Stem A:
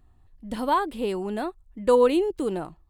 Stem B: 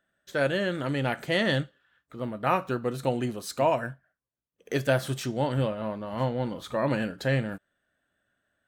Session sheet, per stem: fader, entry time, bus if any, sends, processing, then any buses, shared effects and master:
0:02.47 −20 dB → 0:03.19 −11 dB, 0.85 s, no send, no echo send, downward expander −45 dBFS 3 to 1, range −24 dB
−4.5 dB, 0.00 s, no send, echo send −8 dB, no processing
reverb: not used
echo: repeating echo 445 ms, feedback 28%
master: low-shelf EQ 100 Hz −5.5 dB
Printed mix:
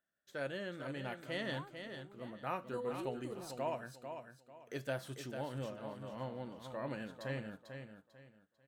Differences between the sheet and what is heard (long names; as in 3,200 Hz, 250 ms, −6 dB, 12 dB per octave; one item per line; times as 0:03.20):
stem A −20.0 dB → −28.5 dB
stem B −4.5 dB → −14.5 dB